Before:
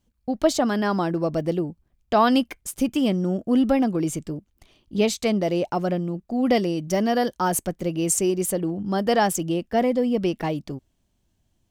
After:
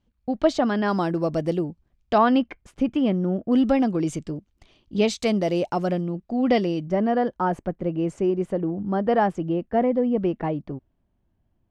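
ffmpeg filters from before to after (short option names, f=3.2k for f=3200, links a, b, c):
-af "asetnsamples=n=441:p=0,asendcmd='0.88 lowpass f 9900;1.64 lowpass f 5600;2.18 lowpass f 2300;3.52 lowpass f 5900;5.2 lowpass f 10000;6.01 lowpass f 4300;6.86 lowpass f 1600',lowpass=3.7k"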